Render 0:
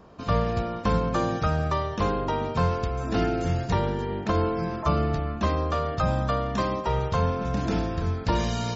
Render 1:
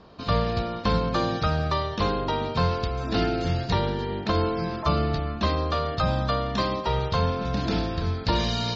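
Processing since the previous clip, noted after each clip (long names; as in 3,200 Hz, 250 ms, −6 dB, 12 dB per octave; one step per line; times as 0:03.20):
low-pass with resonance 4,300 Hz, resonance Q 3.3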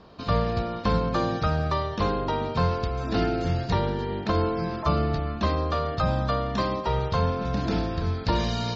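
dynamic equaliser 3,700 Hz, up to −5 dB, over −43 dBFS, Q 0.92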